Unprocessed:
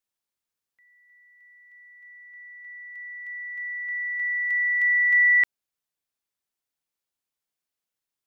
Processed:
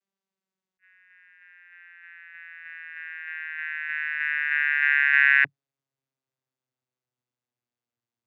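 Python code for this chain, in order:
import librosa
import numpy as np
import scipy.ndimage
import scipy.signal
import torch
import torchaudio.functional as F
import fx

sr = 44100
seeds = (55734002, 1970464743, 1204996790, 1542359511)

y = fx.vocoder_glide(x, sr, note=55, semitones=-9)
y = fx.attack_slew(y, sr, db_per_s=480.0)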